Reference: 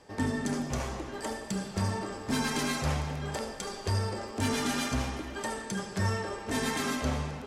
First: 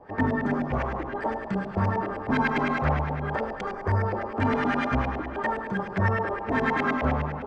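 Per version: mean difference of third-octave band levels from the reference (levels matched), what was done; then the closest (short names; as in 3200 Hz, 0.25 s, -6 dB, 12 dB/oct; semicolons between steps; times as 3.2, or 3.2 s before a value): 8.5 dB: spectral gain 3.72–4.06, 2400–4800 Hz -8 dB; LFO low-pass saw up 9.7 Hz 650–2300 Hz; gain +4.5 dB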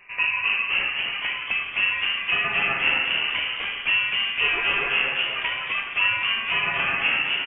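17.0 dB: inverted band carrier 2800 Hz; on a send: frequency-shifting echo 0.255 s, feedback 51%, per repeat +120 Hz, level -4 dB; on the sum: gain +6 dB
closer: first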